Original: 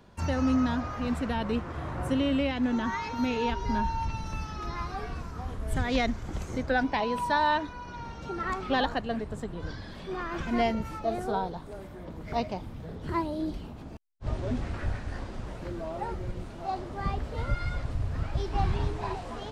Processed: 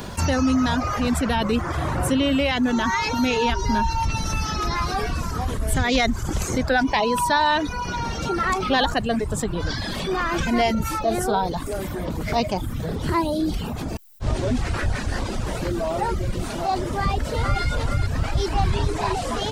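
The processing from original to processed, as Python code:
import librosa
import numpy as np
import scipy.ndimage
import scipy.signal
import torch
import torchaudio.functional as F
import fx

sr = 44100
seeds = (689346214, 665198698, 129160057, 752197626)

y = fx.echo_throw(x, sr, start_s=17.0, length_s=0.63, ms=430, feedback_pct=25, wet_db=-4.5)
y = fx.dereverb_blind(y, sr, rt60_s=0.61)
y = fx.high_shelf(y, sr, hz=4800.0, db=12.0)
y = fx.env_flatten(y, sr, amount_pct=50)
y = y * 10.0 ** (5.0 / 20.0)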